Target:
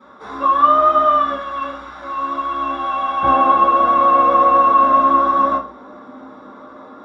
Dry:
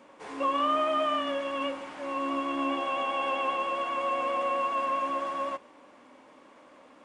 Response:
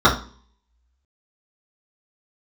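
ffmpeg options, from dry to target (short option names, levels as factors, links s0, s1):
-filter_complex "[0:a]asetnsamples=n=441:p=0,asendcmd='1.34 equalizer g -12;3.23 equalizer g 2.5',equalizer=f=300:w=0.33:g=-6[s0];[1:a]atrim=start_sample=2205[s1];[s0][s1]afir=irnorm=-1:irlink=0,volume=0.266"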